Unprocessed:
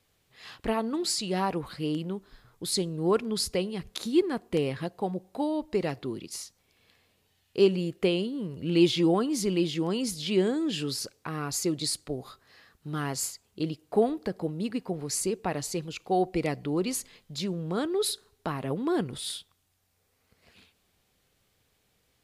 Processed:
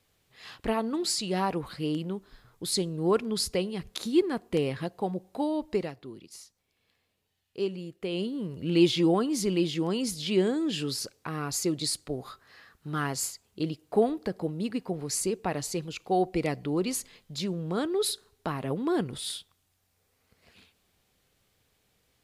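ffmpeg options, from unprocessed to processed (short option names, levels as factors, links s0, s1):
-filter_complex "[0:a]asettb=1/sr,asplit=3[s0][s1][s2];[s0]atrim=end=12.134[s3];[s1]atrim=start=12.13:end=13.07,asetpts=PTS-STARTPTS,afade=t=in:d=0.004:c=qsin,afade=t=out:st=0.936:d=0.004:c=qsin,equalizer=f=1400:w=1.2:g=5[s4];[s2]atrim=start=13.066[s5];[s3][s4]acrossfade=d=0.004:c1=hsin:c2=qsin[s6];[s6][s5]acrossfade=d=0.004:c1=qsin:c2=hsin,asplit=3[s7][s8][s9];[s7]atrim=end=5.91,asetpts=PTS-STARTPTS,afade=t=out:st=5.75:d=0.16:silence=0.354813[s10];[s8]atrim=start=5.91:end=8.08,asetpts=PTS-STARTPTS,volume=0.355[s11];[s9]atrim=start=8.08,asetpts=PTS-STARTPTS,afade=t=in:d=0.16:silence=0.354813[s12];[s10][s11][s12]concat=n=3:v=0:a=1"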